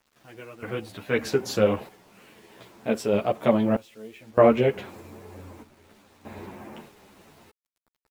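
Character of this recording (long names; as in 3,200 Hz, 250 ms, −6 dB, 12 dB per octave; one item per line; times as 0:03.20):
sample-and-hold tremolo 1.6 Hz, depth 95%
a quantiser's noise floor 10 bits, dither none
a shimmering, thickened sound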